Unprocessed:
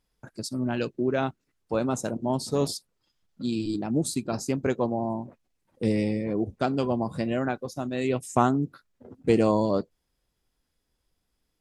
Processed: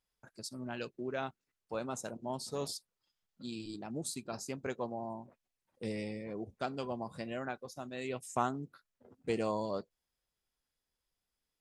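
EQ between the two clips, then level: peaking EQ 300 Hz -3.5 dB 0.33 oct; bass shelf 470 Hz -8 dB; -7.5 dB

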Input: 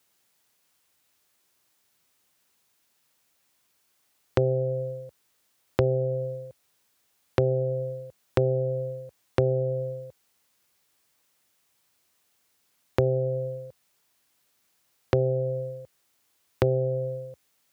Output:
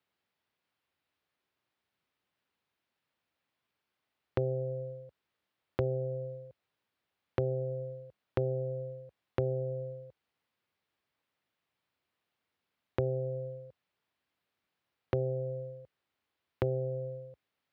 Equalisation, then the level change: distance through air 400 m; treble shelf 4.2 kHz +11.5 dB; -7.5 dB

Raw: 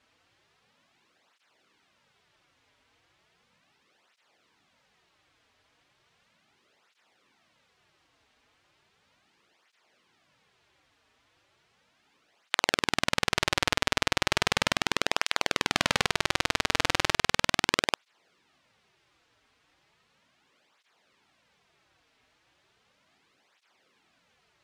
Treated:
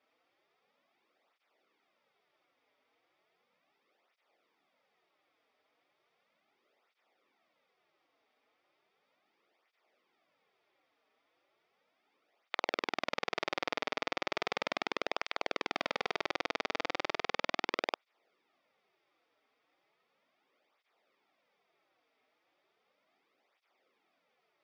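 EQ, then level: cabinet simulation 370–5200 Hz, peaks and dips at 970 Hz -6 dB, 1.6 kHz -9 dB, 2.9 kHz -7 dB; treble shelf 4 kHz -11 dB; band-stop 4.1 kHz, Q 8.4; -2.5 dB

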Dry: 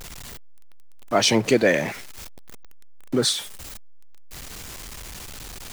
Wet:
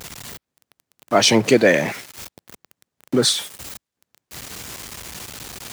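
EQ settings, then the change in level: high-pass 90 Hz 12 dB/octave; +4.0 dB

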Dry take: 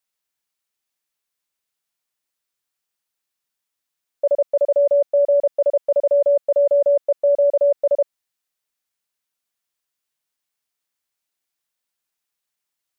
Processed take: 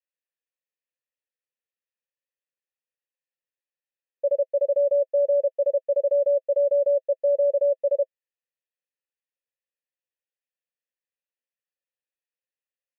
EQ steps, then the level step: vowel filter e; band-stop 630 Hz, Q 12; 0.0 dB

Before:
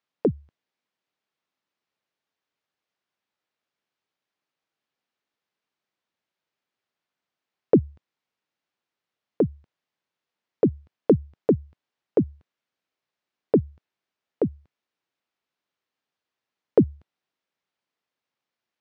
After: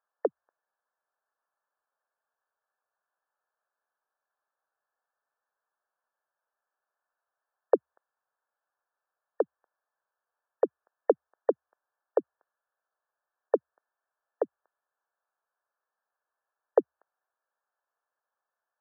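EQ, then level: high-pass 550 Hz 24 dB/octave; brick-wall FIR low-pass 1.8 kHz; +4.0 dB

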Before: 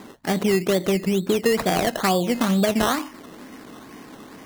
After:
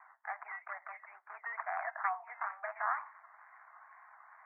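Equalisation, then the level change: steep high-pass 610 Hz 72 dB/octave; steep low-pass 2.2 kHz 72 dB/octave; static phaser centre 1.3 kHz, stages 4; -7.5 dB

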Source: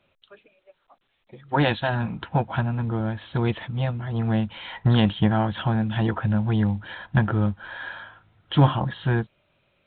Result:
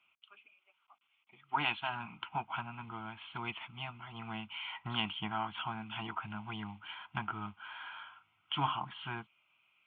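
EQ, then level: dynamic bell 3.1 kHz, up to -3 dB, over -38 dBFS, Q 0.73; band-pass filter 2.6 kHz, Q 0.79; static phaser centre 2.6 kHz, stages 8; +1.0 dB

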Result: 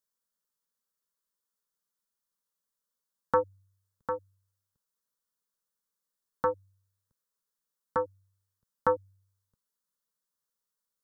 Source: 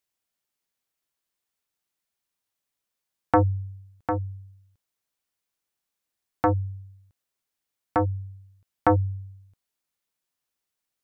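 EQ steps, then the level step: static phaser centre 480 Hz, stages 8; -2.0 dB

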